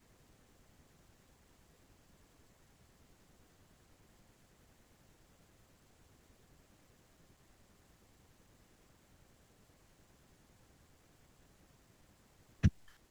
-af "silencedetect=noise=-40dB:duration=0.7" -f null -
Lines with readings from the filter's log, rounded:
silence_start: 0.00
silence_end: 12.63 | silence_duration: 12.63